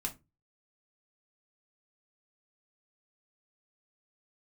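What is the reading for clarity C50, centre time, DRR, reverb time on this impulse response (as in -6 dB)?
16.0 dB, 9 ms, 1.5 dB, 0.25 s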